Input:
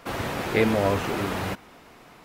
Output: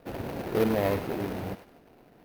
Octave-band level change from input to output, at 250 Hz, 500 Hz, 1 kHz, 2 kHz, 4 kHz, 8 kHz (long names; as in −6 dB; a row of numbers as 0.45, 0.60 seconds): −3.5, −3.0, −7.0, −10.0, −9.5, −9.5 decibels